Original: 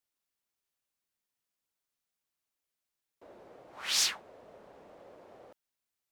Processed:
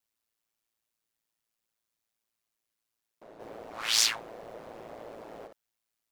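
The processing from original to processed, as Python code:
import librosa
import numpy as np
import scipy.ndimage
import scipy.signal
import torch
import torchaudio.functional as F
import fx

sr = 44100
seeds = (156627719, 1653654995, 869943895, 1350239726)

y = fx.law_mismatch(x, sr, coded='mu', at=(3.39, 5.46), fade=0.02)
y = y * np.sin(2.0 * np.pi * 56.0 * np.arange(len(y)) / sr)
y = F.gain(torch.from_numpy(y), 5.5).numpy()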